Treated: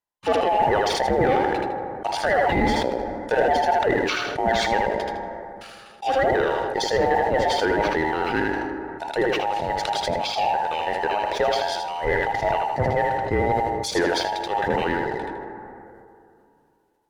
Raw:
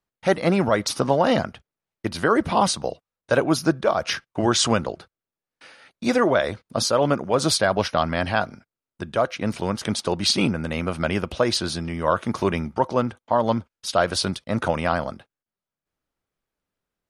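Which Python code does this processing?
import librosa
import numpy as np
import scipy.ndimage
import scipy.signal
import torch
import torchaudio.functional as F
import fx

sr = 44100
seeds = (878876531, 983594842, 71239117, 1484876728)

y = fx.band_invert(x, sr, width_hz=1000)
y = fx.env_lowpass_down(y, sr, base_hz=2200.0, full_db=-18.5)
y = fx.high_shelf(y, sr, hz=9300.0, db=6.5)
y = fx.leveller(y, sr, passes=1)
y = fx.echo_feedback(y, sr, ms=79, feedback_pct=28, wet_db=-5.0)
y = fx.rev_plate(y, sr, seeds[0], rt60_s=2.7, hf_ratio=0.4, predelay_ms=0, drr_db=15.0)
y = fx.sustainer(y, sr, db_per_s=23.0)
y = y * librosa.db_to_amplitude(-5.5)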